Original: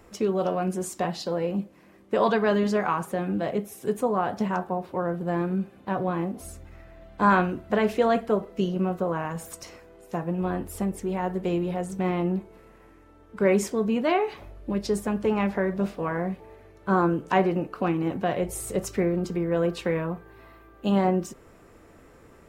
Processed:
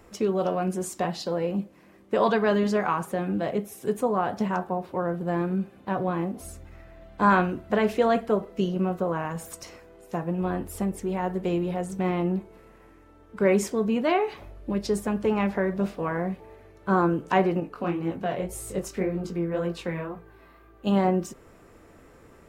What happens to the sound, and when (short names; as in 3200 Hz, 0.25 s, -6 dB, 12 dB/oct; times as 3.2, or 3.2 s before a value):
17.6–20.87 chorus 1.9 Hz, delay 18 ms, depth 5.6 ms